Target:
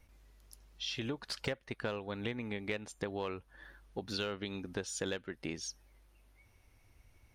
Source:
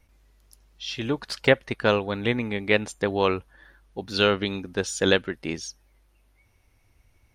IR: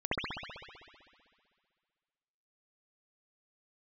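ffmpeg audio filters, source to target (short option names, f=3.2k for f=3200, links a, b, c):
-filter_complex "[0:a]asplit=2[a][b];[b]aeval=exprs='0.224*(abs(mod(val(0)/0.224+3,4)-2)-1)':c=same,volume=-11dB[c];[a][c]amix=inputs=2:normalize=0,acompressor=threshold=-32dB:ratio=5,volume=-4dB"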